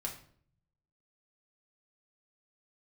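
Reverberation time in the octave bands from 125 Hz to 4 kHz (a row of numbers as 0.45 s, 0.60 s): 1.1 s, 0.80 s, 0.60 s, 0.50 s, 0.45 s, 0.40 s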